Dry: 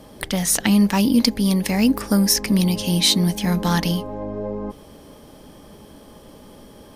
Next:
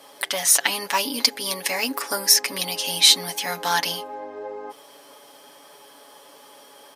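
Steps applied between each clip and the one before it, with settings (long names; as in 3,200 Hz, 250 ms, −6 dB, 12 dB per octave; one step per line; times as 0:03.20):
high-pass filter 730 Hz 12 dB per octave
comb filter 7.1 ms, depth 72%
level +1.5 dB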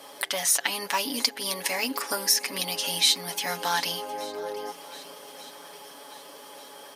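downward compressor 1.5 to 1, threshold −36 dBFS, peak gain reduction 9.5 dB
feedback echo with a long and a short gap by turns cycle 1,188 ms, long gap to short 1.5 to 1, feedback 46%, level −19 dB
level +2 dB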